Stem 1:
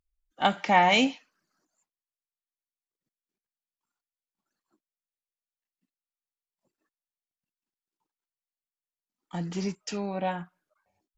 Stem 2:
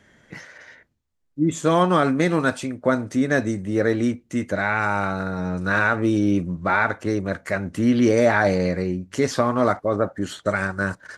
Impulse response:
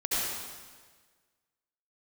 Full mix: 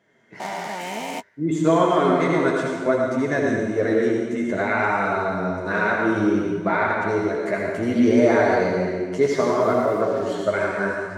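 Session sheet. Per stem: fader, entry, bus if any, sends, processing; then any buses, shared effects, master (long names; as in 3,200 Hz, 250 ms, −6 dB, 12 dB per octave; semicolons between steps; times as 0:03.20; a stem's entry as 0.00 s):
−0.5 dB, 0.00 s, no send, spectrum averaged block by block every 400 ms; short delay modulated by noise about 4,000 Hz, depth 0.041 ms
−11.0 dB, 0.00 s, send −4 dB, high-shelf EQ 8,100 Hz −7.5 dB; automatic gain control gain up to 13 dB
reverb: on, RT60 1.5 s, pre-delay 63 ms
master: high-pass filter 110 Hz; flanger 0.6 Hz, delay 5.7 ms, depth 9.4 ms, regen −26%; hollow resonant body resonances 410/650/960/2,100 Hz, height 9 dB, ringing for 45 ms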